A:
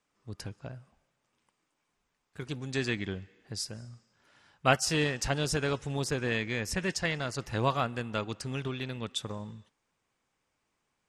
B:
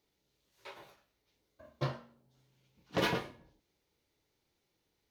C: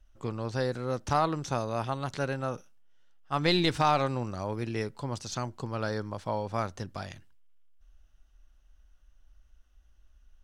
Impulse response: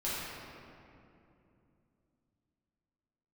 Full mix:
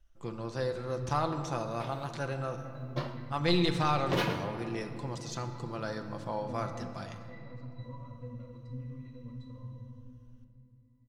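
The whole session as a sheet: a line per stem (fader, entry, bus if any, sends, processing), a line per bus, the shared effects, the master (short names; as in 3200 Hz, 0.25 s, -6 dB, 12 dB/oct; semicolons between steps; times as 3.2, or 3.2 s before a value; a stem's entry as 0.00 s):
0.0 dB, 0.25 s, send -3.5 dB, compressor 6:1, threshold -37 dBFS, peak gain reduction 18 dB; octave resonator B, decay 0.23 s
-1.5 dB, 1.15 s, send -12 dB, dry
-6.5 dB, 0.00 s, send -11 dB, comb 5.9 ms, depth 39%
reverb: on, RT60 2.8 s, pre-delay 5 ms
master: dry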